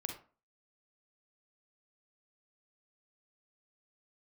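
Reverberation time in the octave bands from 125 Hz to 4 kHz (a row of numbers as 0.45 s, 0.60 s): 0.35 s, 0.40 s, 0.40 s, 0.40 s, 0.30 s, 0.20 s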